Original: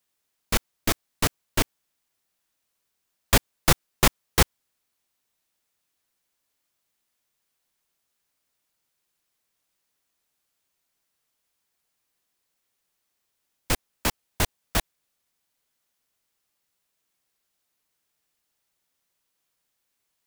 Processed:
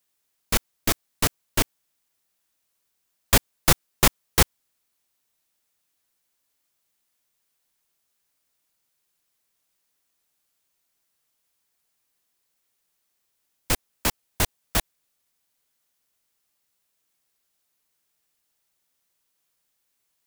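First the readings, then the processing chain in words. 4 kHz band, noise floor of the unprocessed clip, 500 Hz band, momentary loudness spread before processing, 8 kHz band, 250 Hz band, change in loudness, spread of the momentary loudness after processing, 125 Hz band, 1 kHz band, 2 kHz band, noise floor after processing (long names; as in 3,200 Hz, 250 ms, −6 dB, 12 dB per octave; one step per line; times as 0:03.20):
+1.0 dB, −78 dBFS, 0.0 dB, 7 LU, +2.5 dB, 0.0 dB, +1.5 dB, 7 LU, 0.0 dB, 0.0 dB, +0.5 dB, −75 dBFS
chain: high-shelf EQ 6,100 Hz +4 dB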